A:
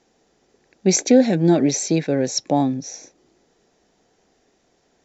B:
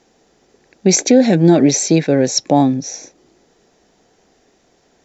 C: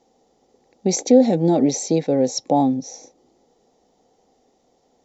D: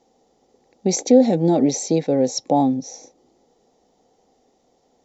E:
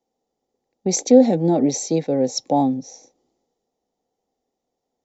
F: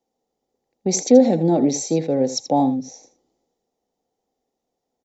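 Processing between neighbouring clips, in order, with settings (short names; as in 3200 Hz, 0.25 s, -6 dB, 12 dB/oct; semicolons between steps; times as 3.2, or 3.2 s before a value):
maximiser +7.5 dB; gain -1 dB
thirty-one-band EQ 250 Hz +6 dB, 500 Hz +8 dB, 800 Hz +9 dB, 1600 Hz -12 dB, 2500 Hz -6 dB; gain -9 dB
nothing audible
three-band expander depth 40%; gain -1 dB
echo 81 ms -13 dB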